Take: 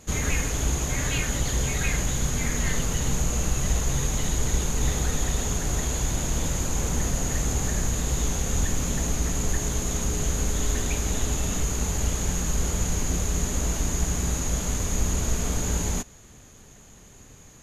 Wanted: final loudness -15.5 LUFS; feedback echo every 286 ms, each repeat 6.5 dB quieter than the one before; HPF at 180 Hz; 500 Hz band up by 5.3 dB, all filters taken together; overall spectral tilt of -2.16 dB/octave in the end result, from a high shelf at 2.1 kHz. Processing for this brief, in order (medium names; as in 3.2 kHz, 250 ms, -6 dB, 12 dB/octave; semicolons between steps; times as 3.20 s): high-pass 180 Hz; peaking EQ 500 Hz +6 dB; treble shelf 2.1 kHz +9 dB; feedback delay 286 ms, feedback 47%, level -6.5 dB; trim +5 dB